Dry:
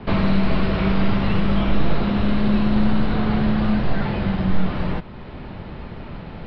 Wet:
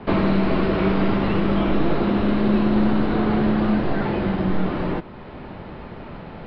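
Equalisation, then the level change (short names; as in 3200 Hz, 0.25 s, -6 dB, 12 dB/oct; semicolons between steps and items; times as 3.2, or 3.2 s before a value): high shelf 2400 Hz -8.5 dB; dynamic EQ 330 Hz, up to +8 dB, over -40 dBFS, Q 2.2; low shelf 200 Hz -9.5 dB; +3.0 dB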